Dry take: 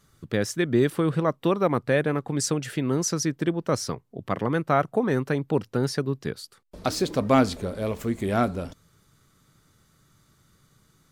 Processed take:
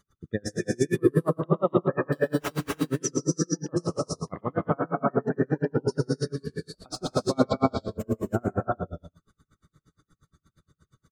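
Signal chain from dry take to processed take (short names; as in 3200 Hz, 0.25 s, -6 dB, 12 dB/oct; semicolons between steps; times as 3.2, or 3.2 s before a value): spectral gate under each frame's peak -20 dB strong; 2.12–2.66 sample-rate reducer 4300 Hz, jitter 0%; echo 0.108 s -10.5 dB; non-linear reverb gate 0.35 s rising, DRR -2.5 dB; dB-linear tremolo 8.5 Hz, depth 37 dB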